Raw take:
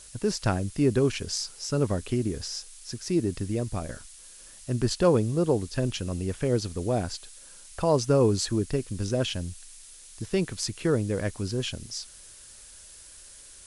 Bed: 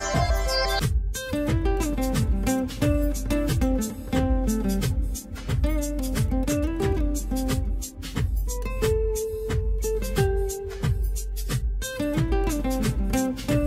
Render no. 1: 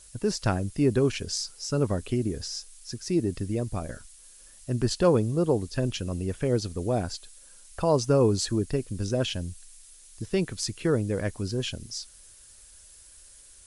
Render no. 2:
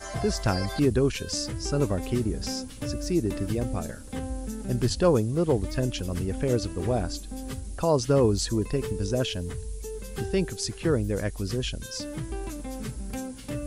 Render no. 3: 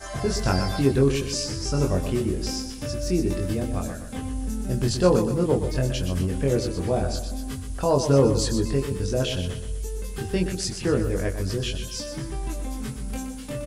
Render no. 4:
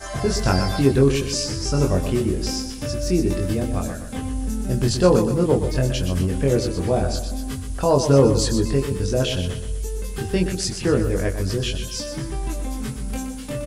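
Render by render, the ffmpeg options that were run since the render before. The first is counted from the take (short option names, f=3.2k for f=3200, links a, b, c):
-af "afftdn=nr=6:nf=-49"
-filter_complex "[1:a]volume=-10.5dB[a];[0:a][a]amix=inputs=2:normalize=0"
-filter_complex "[0:a]asplit=2[a][b];[b]adelay=22,volume=-3dB[c];[a][c]amix=inputs=2:normalize=0,asplit=2[d][e];[e]aecho=0:1:123|246|369|492|615:0.376|0.162|0.0695|0.0299|0.0128[f];[d][f]amix=inputs=2:normalize=0"
-af "volume=3.5dB,alimiter=limit=-3dB:level=0:latency=1"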